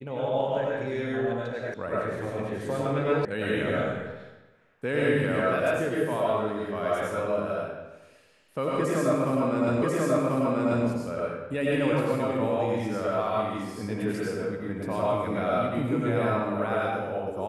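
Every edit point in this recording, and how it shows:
0:01.74: cut off before it has died away
0:03.25: cut off before it has died away
0:09.82: the same again, the last 1.04 s

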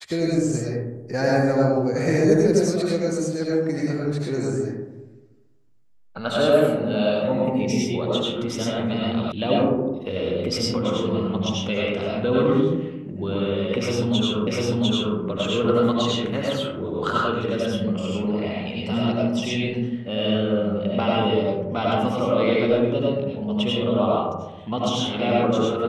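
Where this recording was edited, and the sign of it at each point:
0:09.32: cut off before it has died away
0:14.47: the same again, the last 0.7 s

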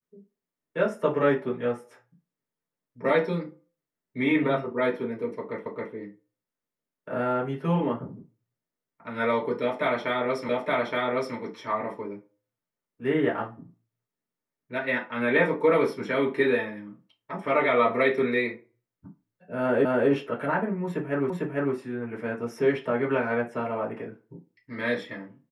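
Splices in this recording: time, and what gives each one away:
0:05.66: the same again, the last 0.27 s
0:10.49: the same again, the last 0.87 s
0:19.85: the same again, the last 0.25 s
0:21.30: the same again, the last 0.45 s

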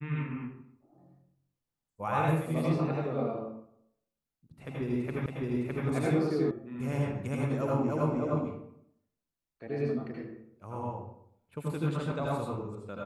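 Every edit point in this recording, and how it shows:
0:05.26: the same again, the last 0.61 s
0:06.51: cut off before it has died away

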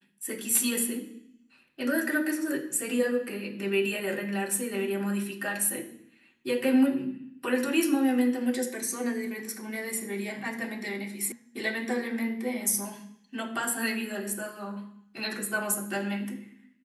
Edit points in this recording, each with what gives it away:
0:11.32: cut off before it has died away

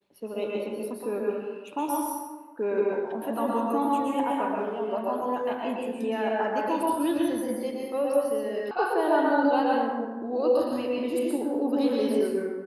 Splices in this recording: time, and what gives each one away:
0:08.71: cut off before it has died away

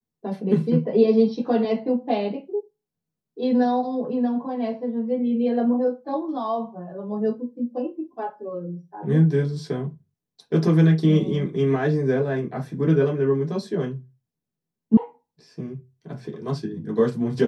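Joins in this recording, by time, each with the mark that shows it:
0:14.97: cut off before it has died away

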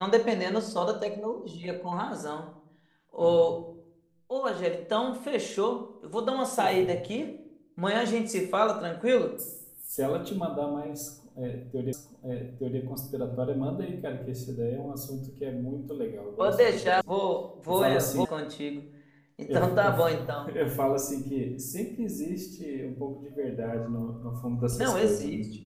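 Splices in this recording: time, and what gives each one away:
0:11.93: the same again, the last 0.87 s
0:17.01: cut off before it has died away
0:18.25: cut off before it has died away

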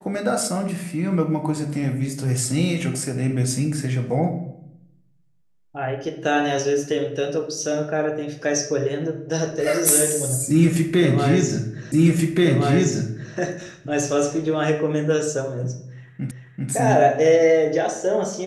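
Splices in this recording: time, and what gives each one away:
0:11.92: the same again, the last 1.43 s
0:16.31: the same again, the last 0.39 s

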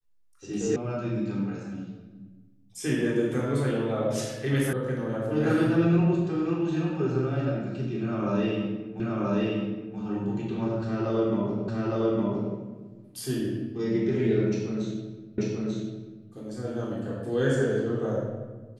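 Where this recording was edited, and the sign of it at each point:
0:00.76: cut off before it has died away
0:04.73: cut off before it has died away
0:09.00: the same again, the last 0.98 s
0:11.68: the same again, the last 0.86 s
0:15.38: the same again, the last 0.89 s

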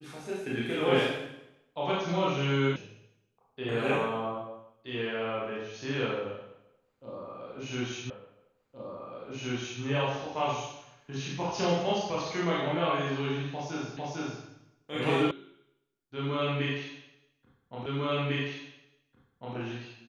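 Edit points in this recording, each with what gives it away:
0:02.76: cut off before it has died away
0:08.10: the same again, the last 1.72 s
0:13.97: the same again, the last 0.45 s
0:15.31: cut off before it has died away
0:17.86: the same again, the last 1.7 s

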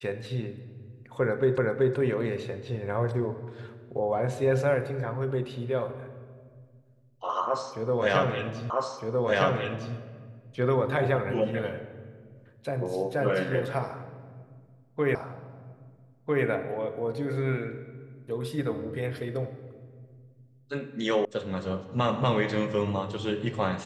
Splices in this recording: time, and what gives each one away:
0:01.58: the same again, the last 0.38 s
0:08.70: the same again, the last 1.26 s
0:15.15: the same again, the last 1.3 s
0:21.25: cut off before it has died away

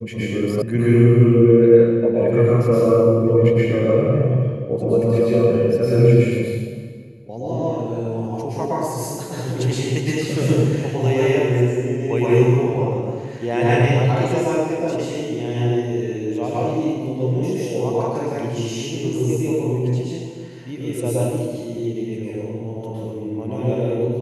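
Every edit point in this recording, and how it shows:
0:00.62: cut off before it has died away

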